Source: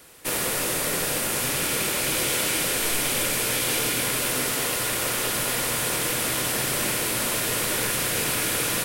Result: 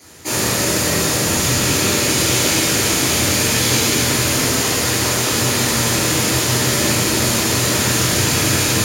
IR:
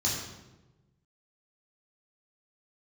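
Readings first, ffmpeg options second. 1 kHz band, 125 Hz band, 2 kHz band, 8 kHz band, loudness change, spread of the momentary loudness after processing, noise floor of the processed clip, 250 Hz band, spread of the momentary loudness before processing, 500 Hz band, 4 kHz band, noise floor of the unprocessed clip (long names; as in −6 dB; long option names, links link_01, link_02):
+7.5 dB, +15.0 dB, +7.0 dB, +8.5 dB, +8.0 dB, 2 LU, −19 dBFS, +12.5 dB, 1 LU, +8.5 dB, +9.0 dB, −27 dBFS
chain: -filter_complex "[1:a]atrim=start_sample=2205[link_01];[0:a][link_01]afir=irnorm=-1:irlink=0"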